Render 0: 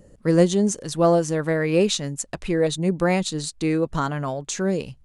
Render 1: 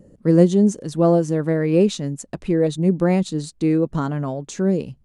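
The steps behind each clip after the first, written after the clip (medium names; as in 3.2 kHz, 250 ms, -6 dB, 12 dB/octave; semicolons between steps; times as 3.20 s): peaking EQ 230 Hz +12 dB 2.9 oct; trim -6.5 dB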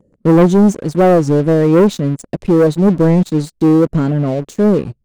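resonant low shelf 710 Hz +6 dB, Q 1.5; waveshaping leveller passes 3; warped record 33 1/3 rpm, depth 160 cents; trim -8 dB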